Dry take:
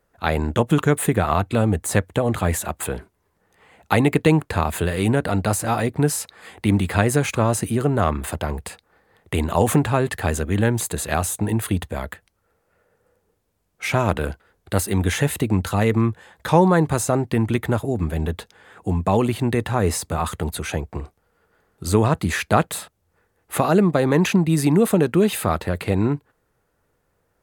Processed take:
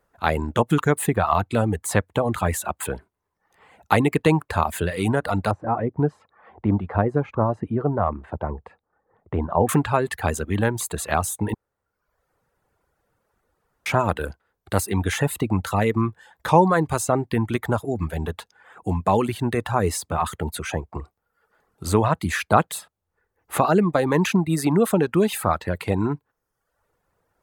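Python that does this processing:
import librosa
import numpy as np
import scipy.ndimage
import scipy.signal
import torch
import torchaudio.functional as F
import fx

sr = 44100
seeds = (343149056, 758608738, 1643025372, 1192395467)

y = fx.lowpass(x, sr, hz=1000.0, slope=12, at=(5.51, 9.69))
y = fx.edit(y, sr, fx.room_tone_fill(start_s=11.54, length_s=2.32), tone=tone)
y = fx.dereverb_blind(y, sr, rt60_s=0.8)
y = fx.peak_eq(y, sr, hz=990.0, db=5.0, octaves=1.2)
y = y * 10.0 ** (-2.0 / 20.0)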